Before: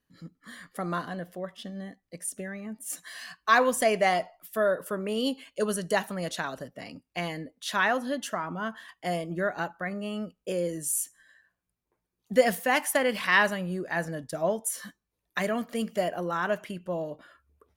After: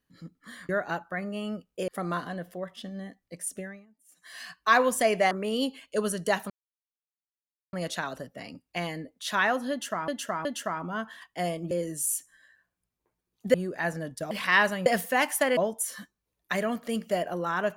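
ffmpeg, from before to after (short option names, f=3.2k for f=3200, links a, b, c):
-filter_complex "[0:a]asplit=14[a][b][c][d][e][f][g][h][i][j][k][l][m][n];[a]atrim=end=0.692[o];[b]atrim=start=9.378:end=10.572[p];[c]atrim=start=0.688:end=2.67,asetpts=PTS-STARTPTS,afade=t=out:st=1.722:d=0.26:silence=0.0668344[q];[d]atrim=start=2.67:end=2.96,asetpts=PTS-STARTPTS,volume=-23.5dB[r];[e]atrim=start=2.96:end=4.122,asetpts=PTS-STARTPTS,afade=t=in:d=0.26:silence=0.0668344[s];[f]atrim=start=4.948:end=6.14,asetpts=PTS-STARTPTS,afade=t=out:st=1.188:d=0.004:c=hsin,apad=pad_dur=1.23[t];[g]atrim=start=6.14:end=8.492,asetpts=PTS-STARTPTS,afade=t=in:d=0.004:c=hsin[u];[h]atrim=start=8.118:end=8.492[v];[i]atrim=start=8.118:end=9.382[w];[j]atrim=start=10.568:end=12.402[x];[k]atrim=start=13.658:end=14.432[y];[l]atrim=start=13.108:end=13.662[z];[m]atrim=start=12.398:end=13.112[aa];[n]atrim=start=14.428[ab];[o][p]acrossfade=d=0.004:c1=hsin:c2=hsin[ac];[q][r][s]concat=n=3:v=0:a=1[ad];[ac][ad]acrossfade=d=0.004:c1=hsin:c2=hsin[ae];[t][u]concat=n=2:v=0:a=1[af];[ae][af]acrossfade=d=0.004:c1=hsin:c2=hsin[ag];[ag][v]acrossfade=d=0.004:c1=hsin:c2=hsin[ah];[ah][w]acrossfade=d=0.004:c1=hsin:c2=hsin[ai];[ai][x]acrossfade=d=0.004:c1=hsin:c2=hsin[aj];[aj][y]acrossfade=d=0.004:c1=hsin:c2=hsin[ak];[ak][z]acrossfade=d=0.004:c1=hsin:c2=hsin[al];[al][aa]acrossfade=d=0.004:c1=hsin:c2=hsin[am];[am][ab]acrossfade=d=0.004:c1=hsin:c2=hsin"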